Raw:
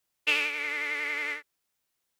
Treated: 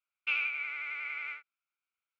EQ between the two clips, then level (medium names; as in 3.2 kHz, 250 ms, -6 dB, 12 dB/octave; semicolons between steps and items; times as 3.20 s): two resonant band-passes 1.8 kHz, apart 0.74 oct; distance through air 50 m; 0.0 dB